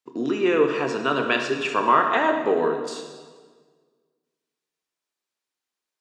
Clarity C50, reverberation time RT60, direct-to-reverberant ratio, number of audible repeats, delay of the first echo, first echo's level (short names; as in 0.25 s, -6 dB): 5.5 dB, 1.6 s, 3.5 dB, none, none, none